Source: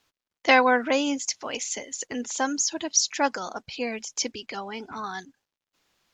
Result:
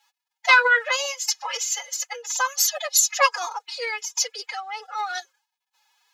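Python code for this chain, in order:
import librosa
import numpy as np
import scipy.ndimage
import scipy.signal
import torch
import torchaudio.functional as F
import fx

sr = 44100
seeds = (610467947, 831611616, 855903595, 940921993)

y = scipy.signal.sosfilt(scipy.signal.cheby1(3, 1.0, 680.0, 'highpass', fs=sr, output='sos'), x)
y = y + 0.79 * np.pad(y, (int(4.6 * sr / 1000.0), 0))[:len(y)]
y = fx.pitch_keep_formants(y, sr, semitones=11.5)
y = y * librosa.db_to_amplitude(4.5)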